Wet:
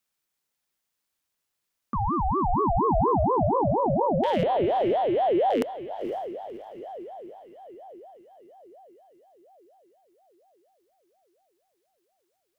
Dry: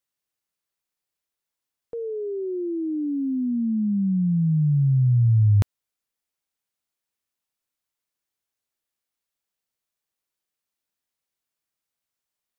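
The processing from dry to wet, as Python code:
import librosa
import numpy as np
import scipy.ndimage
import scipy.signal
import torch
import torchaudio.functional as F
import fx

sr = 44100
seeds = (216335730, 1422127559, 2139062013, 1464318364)

p1 = fx.rattle_buzz(x, sr, strikes_db=-20.0, level_db=-24.0)
p2 = scipy.signal.sosfilt(scipy.signal.butter(2, 110.0, 'highpass', fs=sr, output='sos'), p1)
p3 = fx.over_compress(p2, sr, threshold_db=-26.0, ratio=-0.5)
p4 = p2 + (p3 * librosa.db_to_amplitude(2.5))
p5 = fx.lpc_monotone(p4, sr, seeds[0], pitch_hz=240.0, order=8, at=(4.43, 5.5))
p6 = p5 + fx.echo_diffused(p5, sr, ms=505, feedback_pct=49, wet_db=-11.5, dry=0)
p7 = fx.ring_lfo(p6, sr, carrier_hz=560.0, swing_pct=40, hz=4.2)
y = p7 * librosa.db_to_amplitude(-2.5)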